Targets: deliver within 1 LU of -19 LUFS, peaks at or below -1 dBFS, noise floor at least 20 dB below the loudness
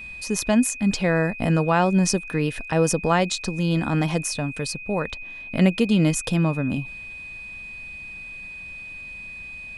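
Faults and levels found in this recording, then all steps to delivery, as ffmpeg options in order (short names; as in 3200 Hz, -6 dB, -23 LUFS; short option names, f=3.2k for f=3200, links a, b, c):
steady tone 2500 Hz; tone level -35 dBFS; loudness -22.5 LUFS; peak -5.5 dBFS; loudness target -19.0 LUFS
-> -af "bandreject=f=2.5k:w=30"
-af "volume=3.5dB"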